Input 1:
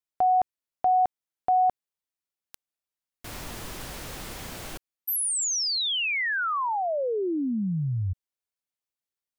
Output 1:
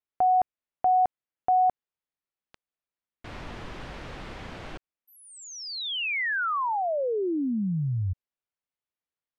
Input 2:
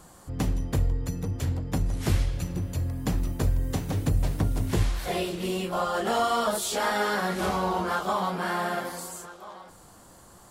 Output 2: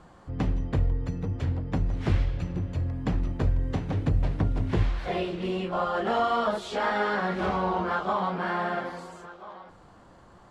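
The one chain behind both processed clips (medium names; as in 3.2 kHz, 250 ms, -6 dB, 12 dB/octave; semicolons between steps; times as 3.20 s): low-pass 2.9 kHz 12 dB/octave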